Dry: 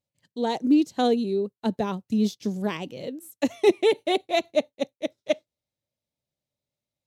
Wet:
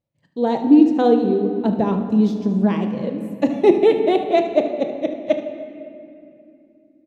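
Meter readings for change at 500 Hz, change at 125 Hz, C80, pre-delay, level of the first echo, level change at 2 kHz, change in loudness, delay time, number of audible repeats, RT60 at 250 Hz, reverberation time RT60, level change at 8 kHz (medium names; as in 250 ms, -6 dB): +7.0 dB, +9.5 dB, 8.5 dB, 6 ms, -13.5 dB, +1.0 dB, +7.5 dB, 74 ms, 1, 4.4 s, 2.6 s, no reading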